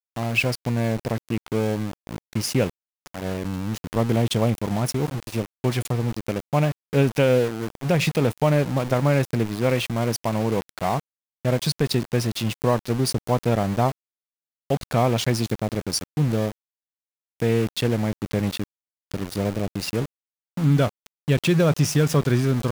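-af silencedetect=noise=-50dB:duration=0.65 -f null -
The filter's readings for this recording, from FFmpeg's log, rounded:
silence_start: 13.92
silence_end: 14.70 | silence_duration: 0.78
silence_start: 16.52
silence_end: 17.40 | silence_duration: 0.88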